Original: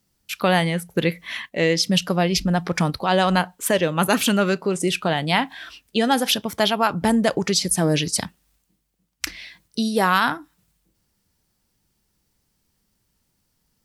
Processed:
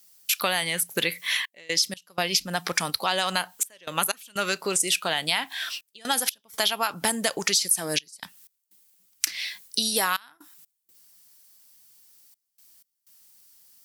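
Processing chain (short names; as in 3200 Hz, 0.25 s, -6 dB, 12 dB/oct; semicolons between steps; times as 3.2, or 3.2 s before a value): tilt +4.5 dB/oct; in parallel at +1.5 dB: limiter -4.5 dBFS, peak gain reduction 9.5 dB; on the sum: compressor 4:1, threshold -16 dBFS, peak gain reduction 14 dB; step gate "xxxxxx.x." 62 bpm -24 dB; gain -5.5 dB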